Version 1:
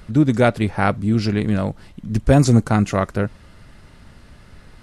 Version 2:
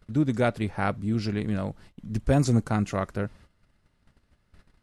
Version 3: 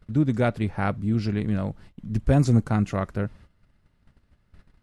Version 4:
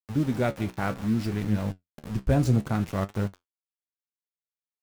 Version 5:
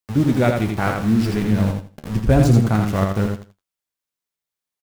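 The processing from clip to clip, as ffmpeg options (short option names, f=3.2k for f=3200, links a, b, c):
-af "agate=range=-15dB:threshold=-40dB:ratio=16:detection=peak,volume=-8.5dB"
-af "bass=f=250:g=4,treble=f=4k:g=-4"
-filter_complex "[0:a]asplit=2[a][b];[b]adelay=163.3,volume=-20dB,highshelf=f=4k:g=-3.67[c];[a][c]amix=inputs=2:normalize=0,aeval=exprs='val(0)*gte(abs(val(0)),0.0237)':c=same,flanger=delay=9:depth=7.9:regen=58:speed=0.63:shape=triangular,volume=1.5dB"
-af "aecho=1:1:83|166|249:0.596|0.125|0.0263,volume=7.5dB"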